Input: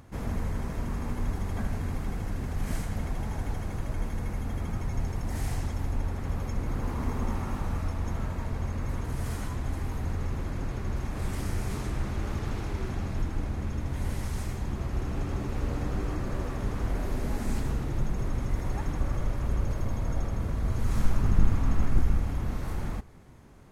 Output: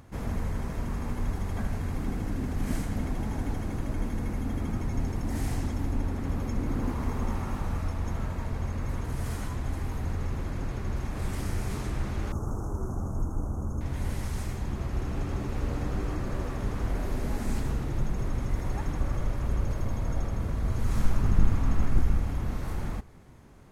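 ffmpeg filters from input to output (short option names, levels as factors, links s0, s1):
-filter_complex "[0:a]asettb=1/sr,asplit=3[s0][s1][s2];[s0]atrim=end=1.974[s3];[s1]atrim=start=1.97:end=6.92,asetpts=PTS-STARTPTS,afade=t=in:d=0.004:c=qsin,afade=t=out:st=4.946:d=0.004:c=qsin,equalizer=f=270:t=o:w=0.77:g=8[s4];[s2]atrim=start=6.916[s5];[s3][s4]acrossfade=d=0.004:c1=hsin:c2=qsin[s6];[s6][s5]acrossfade=d=0.004:c1=qsin:c2=hsin,asettb=1/sr,asplit=3[s7][s8][s9];[s7]atrim=end=12.324[s10];[s8]atrim=start=12.32:end=13.81,asetpts=PTS-STARTPTS,afade=t=in:d=0.004:c=qsin,afade=t=out:st=1.486:d=0.004:c=qsin,asuperstop=centerf=2900:order=12:qfactor=0.64[s11];[s9]atrim=start=13.806[s12];[s10][s11]acrossfade=d=0.004:c1=hsin:c2=qsin[s13];[s13][s12]acrossfade=d=0.004:c1=qsin:c2=hsin"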